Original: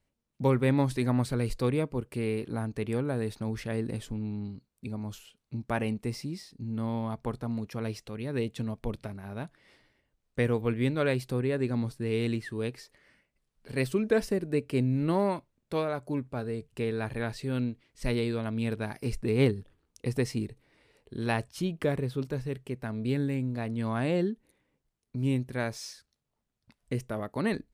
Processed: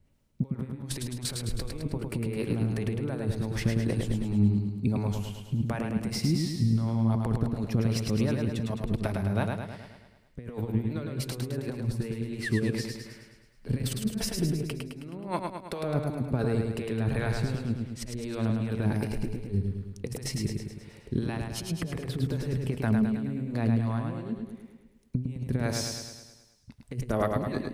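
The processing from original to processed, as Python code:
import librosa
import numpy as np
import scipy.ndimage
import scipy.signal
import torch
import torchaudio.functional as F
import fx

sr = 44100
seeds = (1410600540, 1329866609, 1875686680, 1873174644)

p1 = fx.low_shelf(x, sr, hz=270.0, db=6.0)
p2 = fx.over_compress(p1, sr, threshold_db=-31.0, ratio=-0.5)
p3 = fx.harmonic_tremolo(p2, sr, hz=2.7, depth_pct=70, crossover_hz=410.0)
p4 = p3 + fx.echo_feedback(p3, sr, ms=106, feedback_pct=56, wet_db=-4, dry=0)
y = p4 * 10.0 ** (4.5 / 20.0)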